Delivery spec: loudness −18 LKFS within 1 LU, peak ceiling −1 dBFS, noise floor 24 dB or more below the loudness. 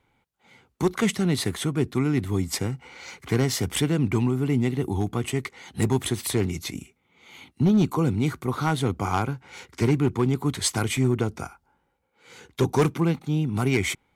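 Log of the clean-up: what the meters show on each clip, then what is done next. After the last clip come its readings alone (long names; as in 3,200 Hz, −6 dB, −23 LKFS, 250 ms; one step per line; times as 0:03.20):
share of clipped samples 0.7%; peaks flattened at −14.0 dBFS; number of dropouts 1; longest dropout 1.6 ms; integrated loudness −25.0 LKFS; sample peak −14.0 dBFS; target loudness −18.0 LKFS
→ clipped peaks rebuilt −14 dBFS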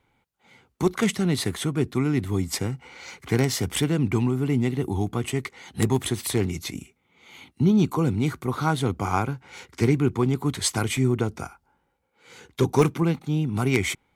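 share of clipped samples 0.0%; number of dropouts 1; longest dropout 1.6 ms
→ repair the gap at 0:10.97, 1.6 ms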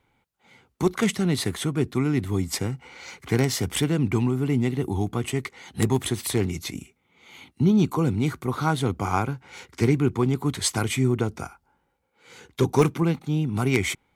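number of dropouts 0; integrated loudness −24.5 LKFS; sample peak −5.0 dBFS; target loudness −18.0 LKFS
→ level +6.5 dB
brickwall limiter −1 dBFS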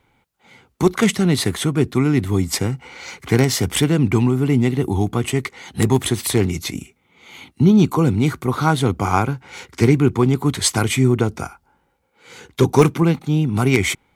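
integrated loudness −18.5 LKFS; sample peak −1.0 dBFS; background noise floor −65 dBFS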